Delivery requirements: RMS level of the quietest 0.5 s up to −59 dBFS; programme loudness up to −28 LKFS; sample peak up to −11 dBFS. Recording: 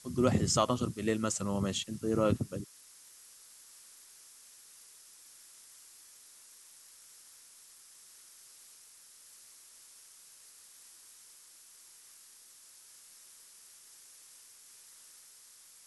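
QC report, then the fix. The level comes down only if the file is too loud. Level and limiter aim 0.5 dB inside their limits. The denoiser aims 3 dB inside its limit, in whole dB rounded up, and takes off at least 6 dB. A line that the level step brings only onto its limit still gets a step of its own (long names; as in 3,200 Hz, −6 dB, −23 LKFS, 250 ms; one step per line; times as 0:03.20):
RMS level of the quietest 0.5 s −57 dBFS: out of spec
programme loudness −31.5 LKFS: in spec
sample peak −13.0 dBFS: in spec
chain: broadband denoise 6 dB, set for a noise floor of −57 dBFS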